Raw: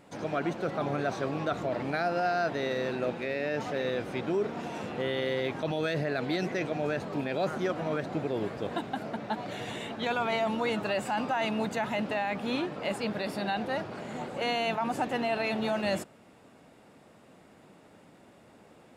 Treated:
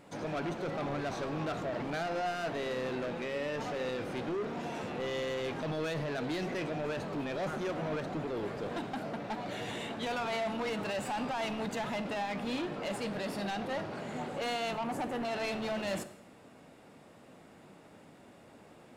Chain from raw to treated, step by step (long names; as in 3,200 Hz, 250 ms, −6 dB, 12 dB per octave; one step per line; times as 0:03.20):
0:14.73–0:15.25: parametric band 3,700 Hz −10.5 dB 1.3 octaves
soft clipping −31.5 dBFS, distortion −9 dB
dense smooth reverb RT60 0.81 s, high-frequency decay 0.9×, DRR 10.5 dB